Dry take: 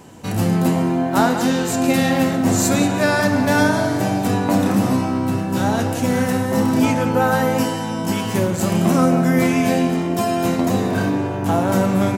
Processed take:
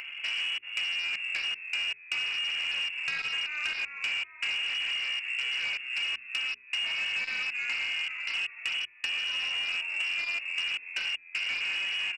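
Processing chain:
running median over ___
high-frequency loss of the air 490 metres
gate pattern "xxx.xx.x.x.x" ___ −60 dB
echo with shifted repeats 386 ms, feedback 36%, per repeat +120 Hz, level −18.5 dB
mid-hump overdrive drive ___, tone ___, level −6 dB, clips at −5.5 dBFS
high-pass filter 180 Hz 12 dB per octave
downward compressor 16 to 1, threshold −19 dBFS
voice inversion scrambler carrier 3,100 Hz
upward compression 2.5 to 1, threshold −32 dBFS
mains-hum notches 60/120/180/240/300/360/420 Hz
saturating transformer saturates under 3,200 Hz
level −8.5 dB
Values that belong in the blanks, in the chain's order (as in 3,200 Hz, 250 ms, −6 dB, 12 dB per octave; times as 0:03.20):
15 samples, 78 BPM, 27 dB, 1,200 Hz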